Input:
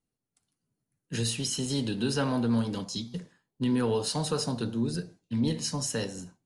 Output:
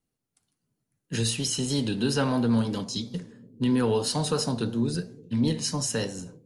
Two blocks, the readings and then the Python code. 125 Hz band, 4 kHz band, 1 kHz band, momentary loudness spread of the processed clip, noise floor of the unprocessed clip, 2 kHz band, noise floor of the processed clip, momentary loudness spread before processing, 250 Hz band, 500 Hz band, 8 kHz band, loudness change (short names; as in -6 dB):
+3.0 dB, +3.0 dB, +3.0 dB, 9 LU, under -85 dBFS, +3.0 dB, -83 dBFS, 9 LU, +3.0 dB, +3.0 dB, +3.0 dB, +3.0 dB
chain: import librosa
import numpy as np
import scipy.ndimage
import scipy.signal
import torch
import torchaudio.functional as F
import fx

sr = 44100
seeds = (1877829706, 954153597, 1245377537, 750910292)

y = fx.echo_bbd(x, sr, ms=285, stages=1024, feedback_pct=69, wet_db=-22.5)
y = fx.vibrato(y, sr, rate_hz=3.0, depth_cents=25.0)
y = y * librosa.db_to_amplitude(3.0)